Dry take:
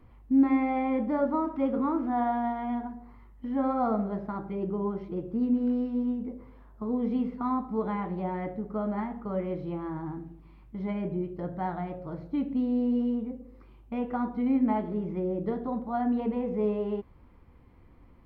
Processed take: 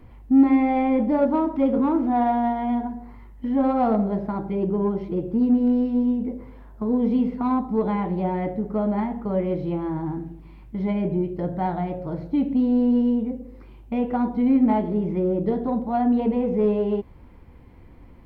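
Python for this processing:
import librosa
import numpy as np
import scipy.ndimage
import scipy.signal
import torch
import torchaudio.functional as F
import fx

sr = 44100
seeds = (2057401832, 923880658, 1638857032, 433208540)

p1 = fx.dynamic_eq(x, sr, hz=1600.0, q=1.7, threshold_db=-51.0, ratio=4.0, max_db=-5)
p2 = 10.0 ** (-25.5 / 20.0) * np.tanh(p1 / 10.0 ** (-25.5 / 20.0))
p3 = p1 + F.gain(torch.from_numpy(p2), -5.0).numpy()
p4 = fx.peak_eq(p3, sr, hz=1200.0, db=-6.5, octaves=0.3)
y = F.gain(torch.from_numpy(p4), 4.5).numpy()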